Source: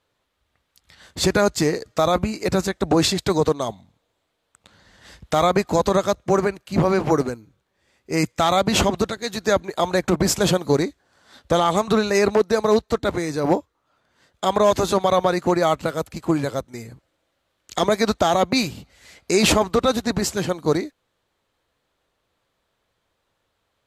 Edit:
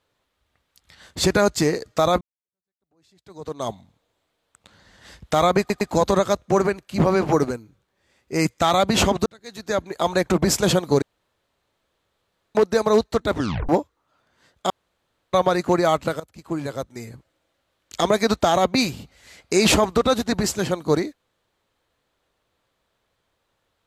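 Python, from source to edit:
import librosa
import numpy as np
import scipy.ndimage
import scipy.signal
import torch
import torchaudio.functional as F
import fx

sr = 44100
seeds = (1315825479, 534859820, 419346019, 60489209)

y = fx.edit(x, sr, fx.fade_in_span(start_s=2.21, length_s=1.46, curve='exp'),
    fx.stutter(start_s=5.59, slice_s=0.11, count=3),
    fx.fade_in_span(start_s=9.04, length_s=0.83),
    fx.room_tone_fill(start_s=10.8, length_s=1.53),
    fx.tape_stop(start_s=13.12, length_s=0.35),
    fx.room_tone_fill(start_s=14.48, length_s=0.63),
    fx.fade_in_from(start_s=15.98, length_s=0.88, floor_db=-19.5), tone=tone)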